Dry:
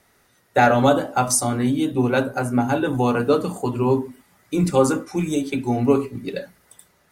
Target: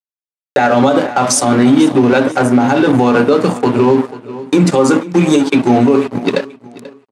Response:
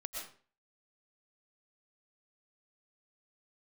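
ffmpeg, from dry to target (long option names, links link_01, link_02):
-af "lowshelf=frequency=270:gain=5,aeval=exprs='sgn(val(0))*max(abs(val(0))-0.0237,0)':channel_layout=same,acompressor=mode=upward:threshold=-31dB:ratio=2.5,highpass=210,lowpass=6900,acompressor=threshold=-18dB:ratio=6,aecho=1:1:487|974:0.0944|0.0302,alimiter=level_in=17.5dB:limit=-1dB:release=50:level=0:latency=1,volume=-1dB"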